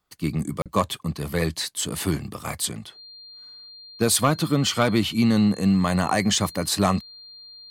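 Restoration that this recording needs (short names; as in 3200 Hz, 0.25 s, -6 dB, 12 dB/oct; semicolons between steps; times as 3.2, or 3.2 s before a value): clip repair -10.5 dBFS; notch 4200 Hz, Q 30; interpolate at 0.62, 37 ms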